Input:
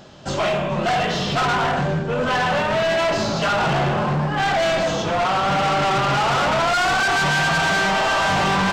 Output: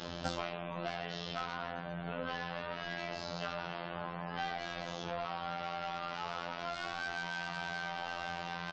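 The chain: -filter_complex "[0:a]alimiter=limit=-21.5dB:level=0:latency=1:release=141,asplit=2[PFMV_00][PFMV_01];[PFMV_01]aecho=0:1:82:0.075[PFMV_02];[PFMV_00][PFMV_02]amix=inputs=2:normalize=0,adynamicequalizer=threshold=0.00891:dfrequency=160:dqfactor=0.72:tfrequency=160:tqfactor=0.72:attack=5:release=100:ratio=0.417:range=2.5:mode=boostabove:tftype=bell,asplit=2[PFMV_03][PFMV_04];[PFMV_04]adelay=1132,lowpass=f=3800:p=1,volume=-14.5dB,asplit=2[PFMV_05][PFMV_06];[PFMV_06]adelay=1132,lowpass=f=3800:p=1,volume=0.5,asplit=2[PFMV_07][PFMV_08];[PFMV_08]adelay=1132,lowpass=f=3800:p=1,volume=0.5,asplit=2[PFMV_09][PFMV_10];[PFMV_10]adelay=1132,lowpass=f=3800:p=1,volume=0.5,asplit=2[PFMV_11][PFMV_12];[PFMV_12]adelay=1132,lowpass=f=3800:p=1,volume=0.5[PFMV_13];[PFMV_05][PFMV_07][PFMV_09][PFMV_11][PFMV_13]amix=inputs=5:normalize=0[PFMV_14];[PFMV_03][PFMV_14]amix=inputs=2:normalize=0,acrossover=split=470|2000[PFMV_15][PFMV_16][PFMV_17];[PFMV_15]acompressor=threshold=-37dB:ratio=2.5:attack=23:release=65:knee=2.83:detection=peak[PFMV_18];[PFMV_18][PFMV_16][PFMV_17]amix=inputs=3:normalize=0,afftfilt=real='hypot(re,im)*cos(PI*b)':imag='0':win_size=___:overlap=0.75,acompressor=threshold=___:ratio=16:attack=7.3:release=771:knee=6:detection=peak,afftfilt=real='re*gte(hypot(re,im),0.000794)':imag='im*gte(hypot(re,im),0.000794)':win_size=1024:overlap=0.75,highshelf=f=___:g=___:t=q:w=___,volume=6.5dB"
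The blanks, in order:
2048, -37dB, 6400, -7, 1.5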